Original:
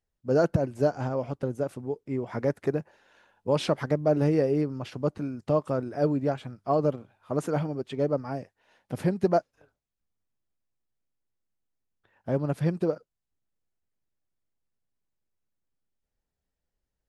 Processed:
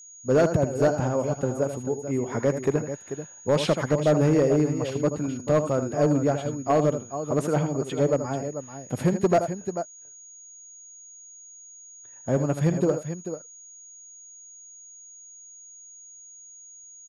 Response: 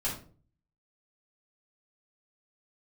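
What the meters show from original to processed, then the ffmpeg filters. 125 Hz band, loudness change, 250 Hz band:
+4.0 dB, +3.0 dB, +4.0 dB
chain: -af "aecho=1:1:79|439:0.316|0.299,asoftclip=type=hard:threshold=0.133,aeval=exprs='val(0)+0.00398*sin(2*PI*6700*n/s)':c=same,volume=1.5"

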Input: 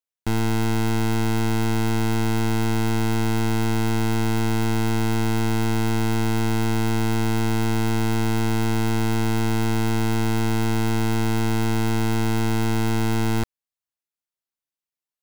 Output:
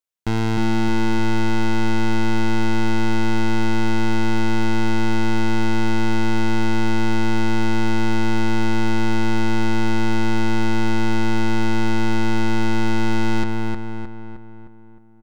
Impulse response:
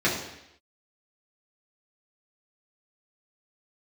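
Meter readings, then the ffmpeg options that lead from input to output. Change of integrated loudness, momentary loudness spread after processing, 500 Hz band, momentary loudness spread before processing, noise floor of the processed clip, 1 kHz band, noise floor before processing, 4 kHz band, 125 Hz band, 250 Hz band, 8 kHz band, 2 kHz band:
+1.0 dB, 1 LU, +1.0 dB, 0 LU, -41 dBFS, +3.0 dB, under -85 dBFS, +1.5 dB, -2.5 dB, +2.5 dB, -4.0 dB, +4.5 dB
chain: -filter_complex "[0:a]asplit=2[s0][s1];[s1]adelay=309,lowpass=f=2700:p=1,volume=0.708,asplit=2[s2][s3];[s3]adelay=309,lowpass=f=2700:p=1,volume=0.53,asplit=2[s4][s5];[s5]adelay=309,lowpass=f=2700:p=1,volume=0.53,asplit=2[s6][s7];[s7]adelay=309,lowpass=f=2700:p=1,volume=0.53,asplit=2[s8][s9];[s9]adelay=309,lowpass=f=2700:p=1,volume=0.53,asplit=2[s10][s11];[s11]adelay=309,lowpass=f=2700:p=1,volume=0.53,asplit=2[s12][s13];[s13]adelay=309,lowpass=f=2700:p=1,volume=0.53[s14];[s0][s2][s4][s6][s8][s10][s12][s14]amix=inputs=8:normalize=0,acrossover=split=6600[s15][s16];[s16]acompressor=threshold=0.00282:ratio=4:attack=1:release=60[s17];[s15][s17]amix=inputs=2:normalize=0,volume=1.19"

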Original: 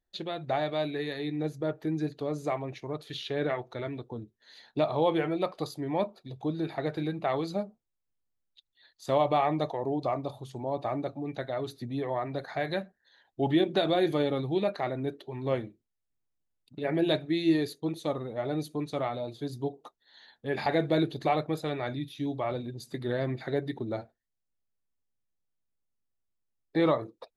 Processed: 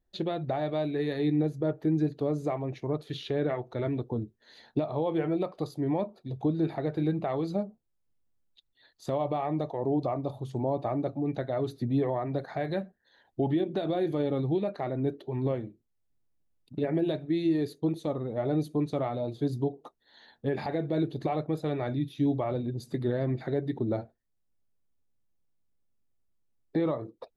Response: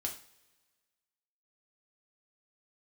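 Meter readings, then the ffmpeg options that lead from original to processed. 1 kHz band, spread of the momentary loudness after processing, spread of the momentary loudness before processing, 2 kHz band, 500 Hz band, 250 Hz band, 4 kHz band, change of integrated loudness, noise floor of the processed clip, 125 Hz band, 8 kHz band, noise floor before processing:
-3.5 dB, 6 LU, 11 LU, -6.0 dB, -0.5 dB, +2.0 dB, -7.0 dB, +0.5 dB, -75 dBFS, +4.0 dB, no reading, -82 dBFS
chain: -af "alimiter=level_in=1.12:limit=0.0631:level=0:latency=1:release=455,volume=0.891,tiltshelf=f=860:g=5.5,volume=1.41"

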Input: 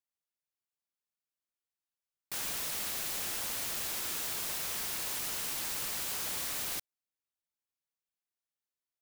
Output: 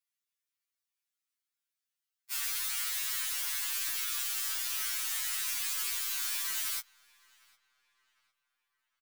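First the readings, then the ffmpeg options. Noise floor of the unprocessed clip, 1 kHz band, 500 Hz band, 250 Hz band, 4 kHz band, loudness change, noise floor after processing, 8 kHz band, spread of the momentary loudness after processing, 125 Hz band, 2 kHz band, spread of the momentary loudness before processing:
under -85 dBFS, -2.5 dB, under -15 dB, under -20 dB, +2.5 dB, +2.0 dB, under -85 dBFS, +2.5 dB, 1 LU, under -15 dB, +2.5 dB, 1 LU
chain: -filter_complex "[0:a]aeval=exprs='if(lt(val(0),0),0.251*val(0),val(0))':c=same,highpass=f=1200:w=0.5412,highpass=f=1200:w=1.3066,asplit=2[s0][s1];[s1]asoftclip=type=tanh:threshold=0.0119,volume=0.668[s2];[s0][s2]amix=inputs=2:normalize=0,asplit=2[s3][s4];[s4]adelay=755,lowpass=f=3000:p=1,volume=0.0708,asplit=2[s5][s6];[s6]adelay=755,lowpass=f=3000:p=1,volume=0.47,asplit=2[s7][s8];[s8]adelay=755,lowpass=f=3000:p=1,volume=0.47[s9];[s3][s5][s7][s9]amix=inputs=4:normalize=0,afftfilt=real='re*2.45*eq(mod(b,6),0)':imag='im*2.45*eq(mod(b,6),0)':win_size=2048:overlap=0.75,volume=1.78"

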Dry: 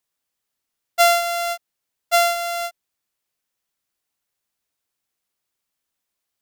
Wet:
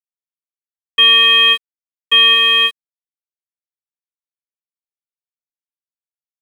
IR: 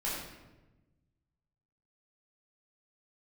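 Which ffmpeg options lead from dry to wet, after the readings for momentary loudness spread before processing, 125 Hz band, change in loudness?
15 LU, no reading, +10.5 dB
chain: -af "apsyclip=10,lowpass=f=3300:t=q:w=0.5098,lowpass=f=3300:t=q:w=0.6013,lowpass=f=3300:t=q:w=0.9,lowpass=f=3300:t=q:w=2.563,afreqshift=-3900,aeval=exprs='sgn(val(0))*max(abs(val(0))-0.0282,0)':c=same,volume=0.531"

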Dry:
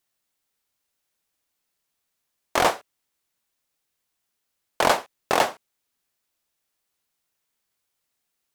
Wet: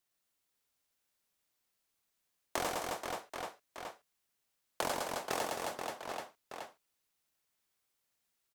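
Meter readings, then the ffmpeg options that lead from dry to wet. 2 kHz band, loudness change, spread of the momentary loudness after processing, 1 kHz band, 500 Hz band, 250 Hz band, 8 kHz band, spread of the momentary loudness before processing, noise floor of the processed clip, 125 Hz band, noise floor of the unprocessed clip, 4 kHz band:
-13.0 dB, -16.0 dB, 13 LU, -13.0 dB, -12.0 dB, -10.5 dB, -8.0 dB, 5 LU, -82 dBFS, -10.0 dB, -79 dBFS, -11.5 dB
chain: -filter_complex "[0:a]aecho=1:1:110|264|479.6|781.4|1204:0.631|0.398|0.251|0.158|0.1,acrossover=split=490|5500[s0][s1][s2];[s0]acompressor=threshold=0.0158:ratio=4[s3];[s1]acompressor=threshold=0.0251:ratio=4[s4];[s2]acompressor=threshold=0.0141:ratio=4[s5];[s3][s4][s5]amix=inputs=3:normalize=0,volume=0.531"

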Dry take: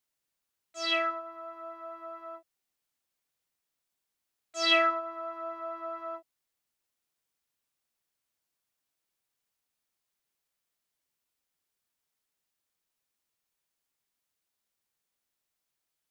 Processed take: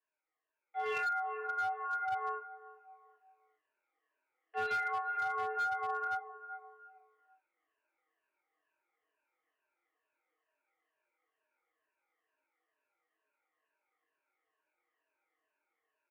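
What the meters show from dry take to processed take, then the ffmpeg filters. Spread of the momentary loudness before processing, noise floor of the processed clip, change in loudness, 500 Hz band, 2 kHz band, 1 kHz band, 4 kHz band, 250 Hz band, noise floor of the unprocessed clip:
19 LU, under -85 dBFS, -6.0 dB, -7.5 dB, -2.0 dB, +1.0 dB, -21.5 dB, under -20 dB, -85 dBFS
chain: -filter_complex "[0:a]afftfilt=real='re*pow(10,18/40*sin(2*PI*(1.3*log(max(b,1)*sr/1024/100)/log(2)-(-2.2)*(pts-256)/sr)))':imag='im*pow(10,18/40*sin(2*PI*(1.3*log(max(b,1)*sr/1024/100)/log(2)-(-2.2)*(pts-256)/sr)))':win_size=1024:overlap=0.75,asoftclip=type=tanh:threshold=0.0794,highpass=f=220:t=q:w=0.5412,highpass=f=220:t=q:w=1.307,lowpass=f=2300:t=q:w=0.5176,lowpass=f=2300:t=q:w=0.7071,lowpass=f=2300:t=q:w=1.932,afreqshift=100,asplit=2[s0][s1];[s1]adelay=389,lowpass=f=1200:p=1,volume=0.178,asplit=2[s2][s3];[s3]adelay=389,lowpass=f=1200:p=1,volume=0.37,asplit=2[s4][s5];[s5]adelay=389,lowpass=f=1200:p=1,volume=0.37[s6];[s0][s2][s4][s6]amix=inputs=4:normalize=0,dynaudnorm=f=140:g=13:m=2.37,aecho=1:1:6.4:0.47,flanger=delay=18:depth=5.7:speed=0.16,acompressor=threshold=0.0282:ratio=16,flanger=delay=3.1:depth=6.3:regen=-86:speed=0.32:shape=triangular,volume=50.1,asoftclip=hard,volume=0.02,volume=1.68"

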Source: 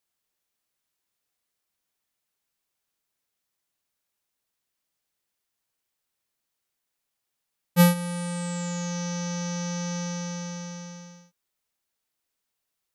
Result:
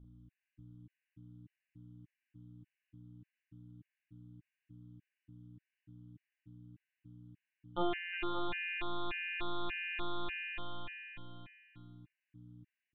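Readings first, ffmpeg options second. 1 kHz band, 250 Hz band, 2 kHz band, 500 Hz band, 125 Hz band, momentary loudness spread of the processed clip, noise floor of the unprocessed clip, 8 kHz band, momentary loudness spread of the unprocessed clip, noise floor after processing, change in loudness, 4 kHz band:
-6.5 dB, -16.0 dB, -2.0 dB, -10.0 dB, -21.0 dB, 21 LU, -83 dBFS, under -40 dB, 17 LU, under -85 dBFS, -11.5 dB, -7.0 dB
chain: -filter_complex "[0:a]highpass=1000,aemphasis=mode=reproduction:type=bsi,agate=range=0.447:threshold=0.00631:ratio=16:detection=peak,asplit=2[s0][s1];[s1]acompressor=threshold=0.002:ratio=6,volume=1.12[s2];[s0][s2]amix=inputs=2:normalize=0,aeval=exprs='max(val(0),0)':c=same,aeval=exprs='val(0)+0.000891*(sin(2*PI*60*n/s)+sin(2*PI*2*60*n/s)/2+sin(2*PI*3*60*n/s)/3+sin(2*PI*4*60*n/s)/4+sin(2*PI*5*60*n/s)/5)':c=same,aeval=exprs='clip(val(0),-1,0.0447)':c=same,asplit=2[s3][s4];[s4]adelay=43,volume=0.708[s5];[s3][s5]amix=inputs=2:normalize=0,aecho=1:1:360|576|705.6|783.4|830:0.631|0.398|0.251|0.158|0.1,aresample=8000,aresample=44100,afftfilt=real='re*gt(sin(2*PI*1.7*pts/sr)*(1-2*mod(floor(b*sr/1024/1500),2)),0)':imag='im*gt(sin(2*PI*1.7*pts/sr)*(1-2*mod(floor(b*sr/1024/1500),2)),0)':win_size=1024:overlap=0.75,volume=2"

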